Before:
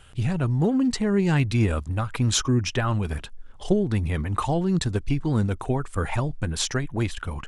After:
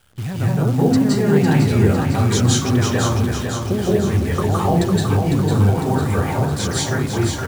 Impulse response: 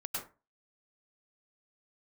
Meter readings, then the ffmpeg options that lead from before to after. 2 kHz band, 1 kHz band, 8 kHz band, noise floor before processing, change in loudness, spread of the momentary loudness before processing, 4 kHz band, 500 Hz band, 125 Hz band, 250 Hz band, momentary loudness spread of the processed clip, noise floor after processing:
+5.5 dB, +8.0 dB, +6.0 dB, -43 dBFS, +7.0 dB, 7 LU, +5.0 dB, +8.0 dB, +7.5 dB, +7.0 dB, 5 LU, -25 dBFS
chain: -filter_complex "[0:a]highpass=f=48:w=0.5412,highpass=f=48:w=1.3066,equalizer=f=2.7k:w=6.4:g=-6[a];[1:a]atrim=start_sample=2205,asetrate=26460,aresample=44100[b];[a][b]afir=irnorm=-1:irlink=0,acrusher=bits=7:dc=4:mix=0:aa=0.000001,aecho=1:1:503|1006|1509|2012|2515|3018|3521:0.501|0.286|0.163|0.0928|0.0529|0.0302|0.0172"

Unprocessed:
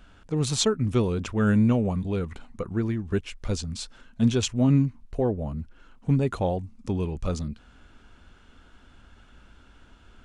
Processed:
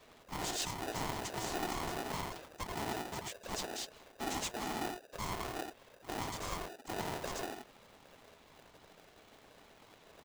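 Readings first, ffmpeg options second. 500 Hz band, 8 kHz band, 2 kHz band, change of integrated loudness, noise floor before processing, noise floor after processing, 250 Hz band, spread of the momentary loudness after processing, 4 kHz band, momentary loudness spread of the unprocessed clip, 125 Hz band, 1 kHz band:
-14.0 dB, -6.5 dB, -3.5 dB, -13.5 dB, -54 dBFS, -62 dBFS, -19.5 dB, 22 LU, -7.0 dB, 15 LU, -22.5 dB, -1.5 dB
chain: -filter_complex "[0:a]acrossover=split=470 3100:gain=0.2 1 0.0708[a][b][c];[a][b][c]amix=inputs=3:normalize=0,aeval=exprs='(tanh(158*val(0)+0.3)-tanh(0.3))/158':c=same,lowpass=f=7k:t=q:w=4.2,afftfilt=real='hypot(re,im)*cos(2*PI*random(0))':imag='hypot(re,im)*sin(2*PI*random(1))':win_size=512:overlap=0.75,acrossover=split=110|710|2800[d][e][f][g];[d]aeval=exprs='0.0126*(cos(1*acos(clip(val(0)/0.0126,-1,1)))-cos(1*PI/2))+0.000398*(cos(2*acos(clip(val(0)/0.0126,-1,1)))-cos(2*PI/2))+0.00316*(cos(3*acos(clip(val(0)/0.0126,-1,1)))-cos(3*PI/2))+0.00398*(cos(5*acos(clip(val(0)/0.0126,-1,1)))-cos(5*PI/2))+0.00224*(cos(7*acos(clip(val(0)/0.0126,-1,1)))-cos(7*PI/2))':c=same[h];[e]aecho=1:1:87:0.631[i];[f]acrusher=bits=4:mix=0:aa=0.000001[j];[h][i][j][g]amix=inputs=4:normalize=0,aeval=exprs='val(0)*sgn(sin(2*PI*540*n/s))':c=same,volume=13.5dB"

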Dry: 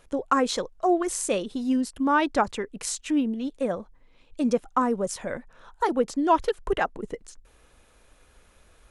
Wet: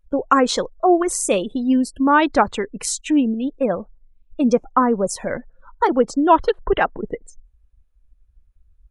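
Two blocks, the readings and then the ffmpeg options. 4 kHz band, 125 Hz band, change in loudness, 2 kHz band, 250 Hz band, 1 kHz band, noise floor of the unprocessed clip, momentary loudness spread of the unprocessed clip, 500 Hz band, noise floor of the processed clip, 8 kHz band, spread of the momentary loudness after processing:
+6.0 dB, +7.0 dB, +7.0 dB, +7.0 dB, +7.0 dB, +7.0 dB, -59 dBFS, 11 LU, +7.0 dB, -59 dBFS, +6.5 dB, 10 LU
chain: -af "afftdn=nr=35:nf=-43,volume=7dB"

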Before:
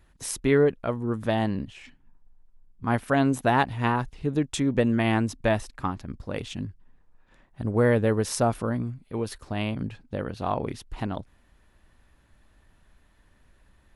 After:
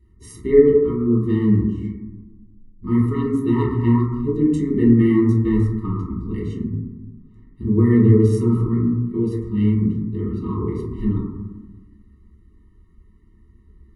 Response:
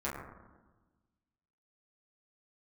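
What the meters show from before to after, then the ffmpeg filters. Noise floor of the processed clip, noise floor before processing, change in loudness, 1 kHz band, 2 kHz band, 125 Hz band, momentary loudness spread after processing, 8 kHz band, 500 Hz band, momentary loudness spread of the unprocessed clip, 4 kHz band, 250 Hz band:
-52 dBFS, -62 dBFS, +8.0 dB, -7.0 dB, -7.5 dB, +10.0 dB, 15 LU, under -10 dB, +6.0 dB, 13 LU, under -10 dB, +10.0 dB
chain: -filter_complex "[0:a]lowshelf=f=730:t=q:w=3:g=6.5[a];[1:a]atrim=start_sample=2205[b];[a][b]afir=irnorm=-1:irlink=0,afftfilt=real='re*eq(mod(floor(b*sr/1024/450),2),0)':imag='im*eq(mod(floor(b*sr/1024/450),2),0)':win_size=1024:overlap=0.75,volume=-5.5dB"

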